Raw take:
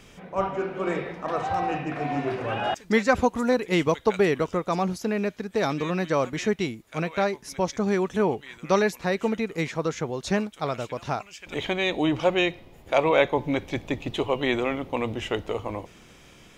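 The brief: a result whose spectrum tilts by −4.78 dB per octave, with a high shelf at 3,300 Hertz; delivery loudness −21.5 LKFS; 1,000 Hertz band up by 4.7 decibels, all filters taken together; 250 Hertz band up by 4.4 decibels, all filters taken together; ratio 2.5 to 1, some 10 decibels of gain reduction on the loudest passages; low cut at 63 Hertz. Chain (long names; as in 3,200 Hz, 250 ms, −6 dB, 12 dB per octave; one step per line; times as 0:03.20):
high-pass filter 63 Hz
parametric band 250 Hz +5.5 dB
parametric band 1,000 Hz +5 dB
high-shelf EQ 3,300 Hz +8.5 dB
downward compressor 2.5 to 1, threshold −27 dBFS
level +8 dB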